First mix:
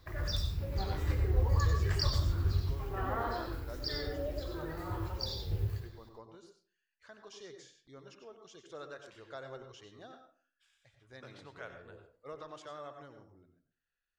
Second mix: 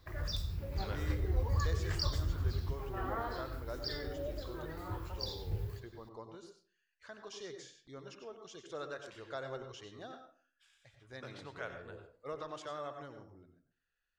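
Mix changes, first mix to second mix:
speech +3.5 dB; background: send -11.5 dB

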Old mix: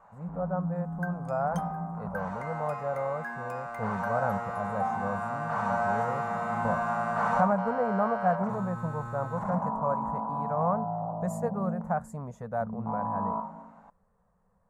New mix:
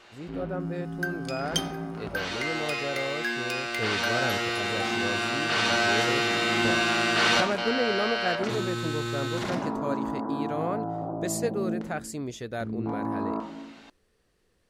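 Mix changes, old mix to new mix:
first sound +4.5 dB; second sound: send on; master: remove EQ curve 130 Hz 0 dB, 190 Hz +9 dB, 330 Hz -22 dB, 500 Hz 0 dB, 970 Hz +10 dB, 3100 Hz -28 dB, 4900 Hz -27 dB, 7100 Hz -14 dB

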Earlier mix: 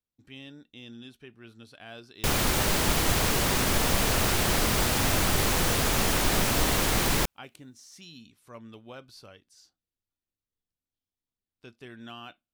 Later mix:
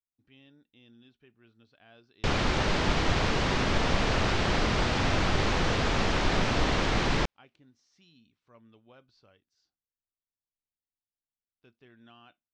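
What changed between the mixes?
speech -11.5 dB; master: add Bessel low-pass 3800 Hz, order 6

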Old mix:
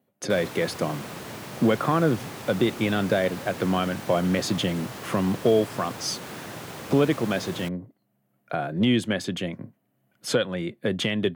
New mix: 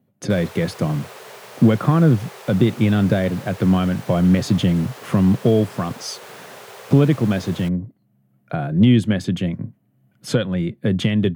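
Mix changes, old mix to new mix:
background: add brick-wall FIR high-pass 370 Hz; master: add tone controls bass +14 dB, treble -1 dB

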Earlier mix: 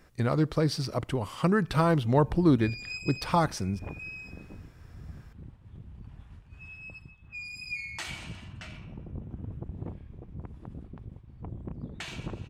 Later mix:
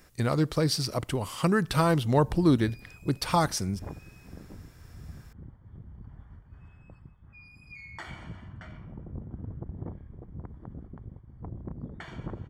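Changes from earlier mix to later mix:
background: add polynomial smoothing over 41 samples; master: add high shelf 4500 Hz +11 dB

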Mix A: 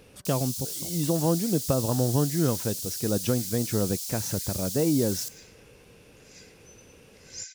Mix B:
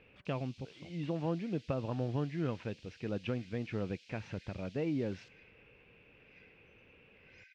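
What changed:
second sound: add air absorption 120 m; master: add ladder low-pass 2800 Hz, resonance 60%

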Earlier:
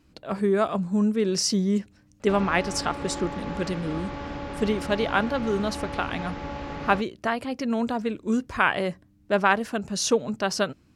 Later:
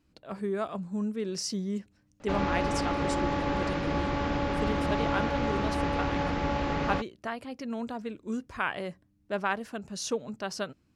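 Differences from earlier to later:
speech -9.0 dB; background +5.0 dB

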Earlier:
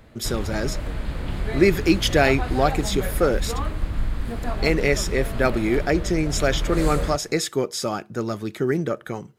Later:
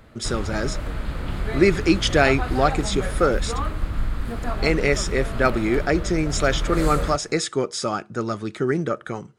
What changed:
speech: add steep low-pass 10000 Hz 72 dB/oct; master: add bell 1300 Hz +5.5 dB 0.41 oct

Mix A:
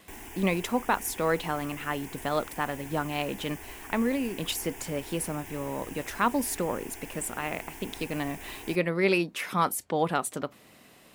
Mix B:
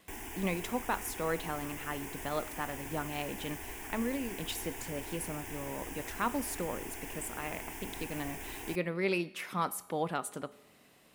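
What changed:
speech -9.5 dB; reverb: on, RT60 1.0 s

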